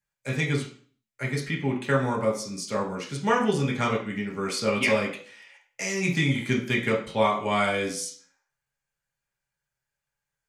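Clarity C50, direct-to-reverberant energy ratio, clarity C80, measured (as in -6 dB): 8.0 dB, -2.5 dB, 12.0 dB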